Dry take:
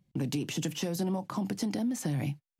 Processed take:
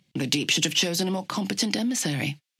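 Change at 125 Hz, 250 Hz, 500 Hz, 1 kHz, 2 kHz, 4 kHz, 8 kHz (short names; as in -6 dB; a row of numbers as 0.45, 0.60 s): +2.0, +4.0, +5.5, +6.0, +15.0, +17.0, +13.0 dB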